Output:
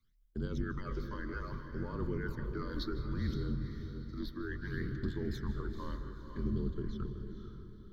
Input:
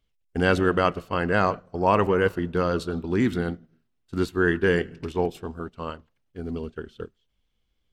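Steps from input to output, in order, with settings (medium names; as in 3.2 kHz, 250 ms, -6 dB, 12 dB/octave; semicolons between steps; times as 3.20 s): octave divider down 1 oct, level -2 dB; reverse; compression 6:1, threshold -30 dBFS, peak gain reduction 15 dB; reverse; peak limiter -28 dBFS, peak gain reduction 9 dB; frequency shift -36 Hz; phase shifter stages 12, 0.64 Hz, lowest notch 130–2000 Hz; static phaser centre 2.7 kHz, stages 6; echo that smears into a reverb 489 ms, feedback 40%, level -7.5 dB; on a send at -14 dB: reverberation RT60 0.55 s, pre-delay 154 ms; on the sum: trim +2.5 dB; Nellymoser 88 kbps 44.1 kHz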